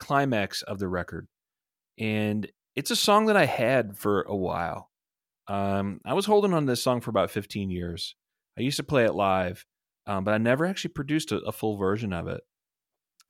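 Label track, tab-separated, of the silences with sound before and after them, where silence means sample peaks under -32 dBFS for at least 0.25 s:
1.190000	2.000000	silence
2.450000	2.770000	silence
4.780000	5.490000	silence
8.090000	8.580000	silence
9.530000	10.080000	silence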